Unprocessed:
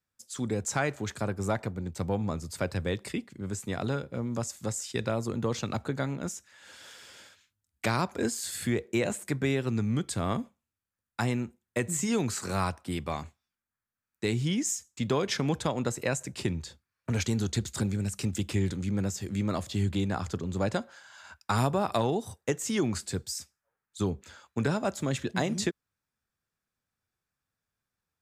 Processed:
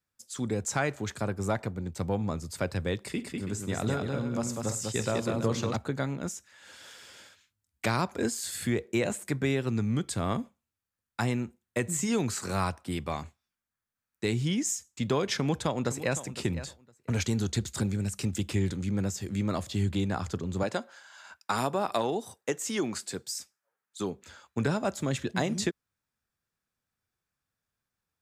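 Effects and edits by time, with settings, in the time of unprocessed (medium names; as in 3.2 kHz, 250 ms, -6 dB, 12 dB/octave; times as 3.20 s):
3.02–5.76 s: multi-tap echo 47/101/198/329 ms -14.5/-19.5/-3.5/-11 dB
15.34–16.22 s: echo throw 510 ms, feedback 15%, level -13.5 dB
20.63–24.22 s: Bessel high-pass 260 Hz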